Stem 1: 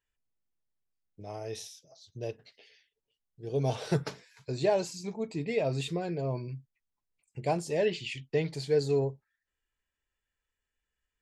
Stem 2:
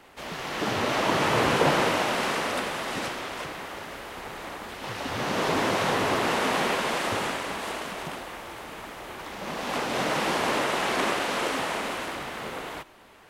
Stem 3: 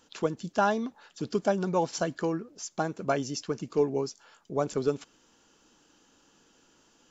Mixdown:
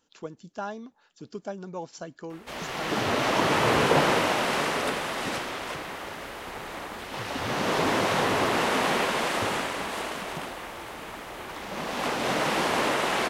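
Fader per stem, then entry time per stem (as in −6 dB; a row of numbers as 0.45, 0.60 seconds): muted, +0.5 dB, −9.5 dB; muted, 2.30 s, 0.00 s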